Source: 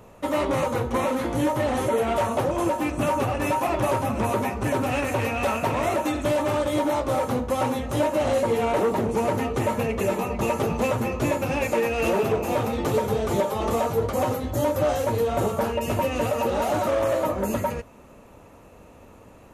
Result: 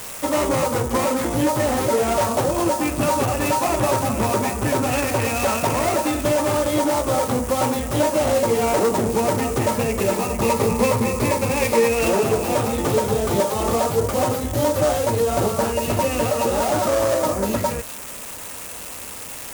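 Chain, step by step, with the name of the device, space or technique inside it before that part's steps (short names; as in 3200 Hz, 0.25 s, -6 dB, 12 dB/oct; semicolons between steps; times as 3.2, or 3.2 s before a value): 10.43–11.99 ripple EQ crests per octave 0.9, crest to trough 8 dB; budget class-D amplifier (switching dead time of 0.12 ms; switching spikes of -19.5 dBFS); gain +3.5 dB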